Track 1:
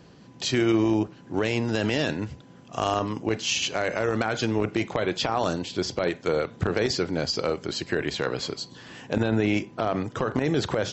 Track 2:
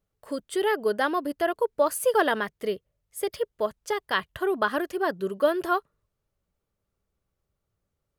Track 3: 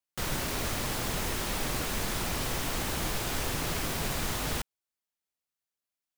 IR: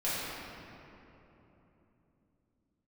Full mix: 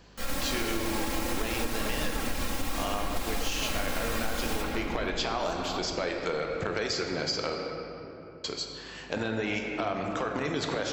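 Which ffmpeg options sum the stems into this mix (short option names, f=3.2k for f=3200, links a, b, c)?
-filter_complex "[0:a]lowshelf=f=440:g=-11,aeval=exprs='val(0)+0.00158*(sin(2*PI*50*n/s)+sin(2*PI*2*50*n/s)/2+sin(2*PI*3*50*n/s)/3+sin(2*PI*4*50*n/s)/4+sin(2*PI*5*50*n/s)/5)':c=same,volume=-2dB,asplit=3[a][b][c];[a]atrim=end=7.55,asetpts=PTS-STARTPTS,afade=t=out:st=7.546:d=0.004:c=hsin[d];[b]atrim=start=7.55:end=8.44,asetpts=PTS-STARTPTS,volume=0[e];[c]atrim=start=8.44,asetpts=PTS-STARTPTS,afade=t=in:d=0.004:c=hsin[f];[d][e][f]concat=n=3:v=0:a=1,asplit=2[g][h];[h]volume=-9dB[i];[1:a]asplit=2[j][k];[k]adelay=2.2,afreqshift=-1.7[l];[j][l]amix=inputs=2:normalize=1,volume=-10dB,asplit=2[m][n];[2:a]aecho=1:1:3.7:0.79,volume=-2dB,asplit=2[o][p];[p]volume=-5dB[q];[n]apad=whole_len=272279[r];[o][r]sidechaingate=range=-33dB:threshold=-59dB:ratio=16:detection=peak[s];[3:a]atrim=start_sample=2205[t];[i][q]amix=inputs=2:normalize=0[u];[u][t]afir=irnorm=-1:irlink=0[v];[g][m][s][v]amix=inputs=4:normalize=0,acompressor=threshold=-26dB:ratio=6"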